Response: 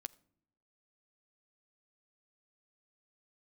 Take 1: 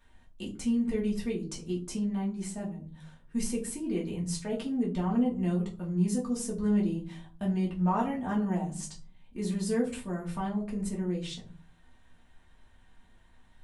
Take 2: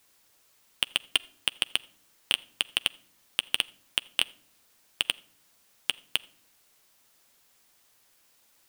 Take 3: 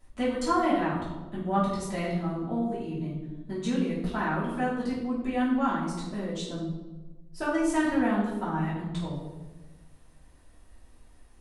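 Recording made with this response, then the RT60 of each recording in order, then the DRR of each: 2; 0.45 s, not exponential, 1.2 s; -5.0, 14.0, -9.5 dB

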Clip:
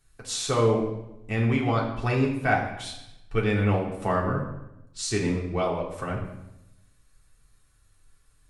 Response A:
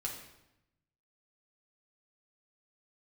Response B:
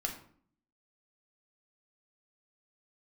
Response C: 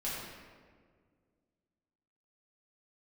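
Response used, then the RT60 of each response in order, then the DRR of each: A; 0.90, 0.55, 1.8 s; -3.5, 2.0, -9.0 dB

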